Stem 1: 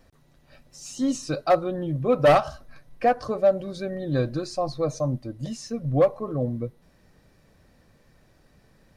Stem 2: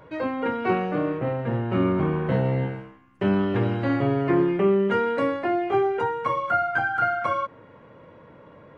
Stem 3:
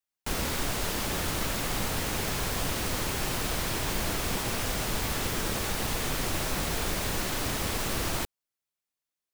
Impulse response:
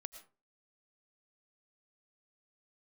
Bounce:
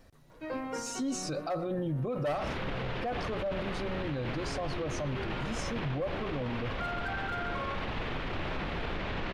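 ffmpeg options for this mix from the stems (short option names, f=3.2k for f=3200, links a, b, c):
-filter_complex "[0:a]volume=-2dB,asplit=3[a][b][c];[b]volume=-9dB[d];[1:a]asoftclip=type=hard:threshold=-17.5dB,adelay=300,volume=-8.5dB,asplit=2[e][f];[f]volume=-10.5dB[g];[2:a]lowpass=f=3.2k:w=0.5412,lowpass=f=3.2k:w=1.3066,adelay=2050,volume=-0.5dB[h];[c]apad=whole_len=400274[i];[e][i]sidechaincompress=threshold=-50dB:ratio=8:attack=41:release=118[j];[3:a]atrim=start_sample=2205[k];[d][k]afir=irnorm=-1:irlink=0[l];[g]aecho=0:1:140:1[m];[a][j][h][l][m]amix=inputs=5:normalize=0,alimiter=level_in=2.5dB:limit=-24dB:level=0:latency=1:release=21,volume=-2.5dB"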